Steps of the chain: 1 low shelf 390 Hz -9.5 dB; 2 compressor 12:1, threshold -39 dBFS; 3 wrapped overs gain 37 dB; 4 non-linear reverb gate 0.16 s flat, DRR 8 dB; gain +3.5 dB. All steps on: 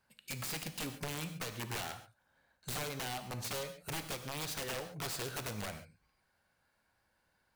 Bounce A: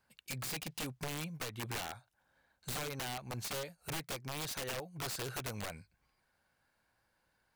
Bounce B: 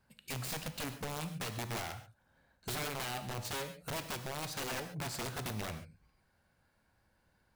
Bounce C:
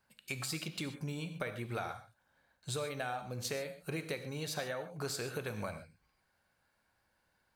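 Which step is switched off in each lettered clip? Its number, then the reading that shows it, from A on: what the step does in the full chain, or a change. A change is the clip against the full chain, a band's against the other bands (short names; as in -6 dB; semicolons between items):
4, crest factor change -4.0 dB; 1, 8 kHz band -2.0 dB; 3, crest factor change +5.5 dB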